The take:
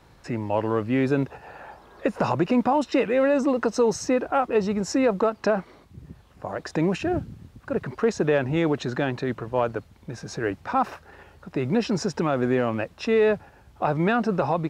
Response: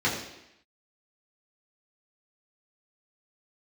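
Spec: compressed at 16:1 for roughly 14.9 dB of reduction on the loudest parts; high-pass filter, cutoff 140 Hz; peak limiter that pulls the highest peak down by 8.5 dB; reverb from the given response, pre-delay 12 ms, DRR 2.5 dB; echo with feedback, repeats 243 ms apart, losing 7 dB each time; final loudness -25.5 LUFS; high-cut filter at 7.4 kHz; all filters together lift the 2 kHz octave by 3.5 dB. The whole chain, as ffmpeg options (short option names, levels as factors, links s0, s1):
-filter_complex "[0:a]highpass=140,lowpass=7400,equalizer=f=2000:t=o:g=4.5,acompressor=threshold=0.0282:ratio=16,alimiter=level_in=1.41:limit=0.0631:level=0:latency=1,volume=0.708,aecho=1:1:243|486|729|972|1215:0.447|0.201|0.0905|0.0407|0.0183,asplit=2[s0][s1];[1:a]atrim=start_sample=2205,adelay=12[s2];[s1][s2]afir=irnorm=-1:irlink=0,volume=0.168[s3];[s0][s3]amix=inputs=2:normalize=0,volume=2.99"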